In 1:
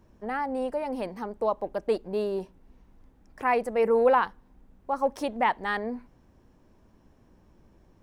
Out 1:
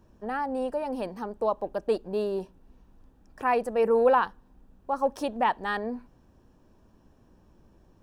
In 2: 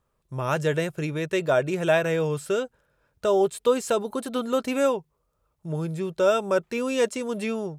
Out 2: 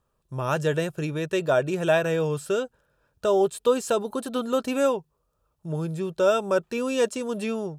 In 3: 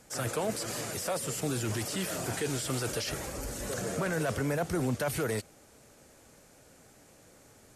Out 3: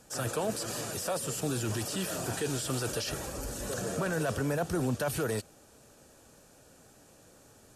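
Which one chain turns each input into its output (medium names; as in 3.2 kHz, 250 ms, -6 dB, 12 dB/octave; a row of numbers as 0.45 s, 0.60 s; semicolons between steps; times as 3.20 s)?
band-stop 2.1 kHz, Q 5.1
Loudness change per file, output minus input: 0.0 LU, 0.0 LU, 0.0 LU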